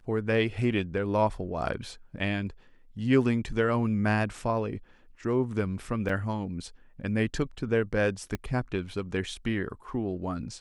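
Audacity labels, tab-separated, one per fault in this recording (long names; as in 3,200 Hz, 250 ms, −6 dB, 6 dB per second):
6.090000	6.090000	drop-out 4.2 ms
8.350000	8.350000	click −18 dBFS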